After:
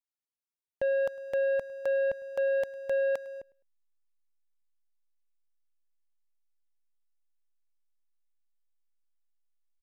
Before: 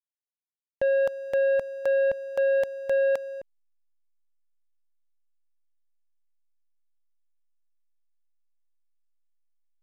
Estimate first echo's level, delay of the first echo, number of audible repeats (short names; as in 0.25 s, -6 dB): -23.0 dB, 0.104 s, 2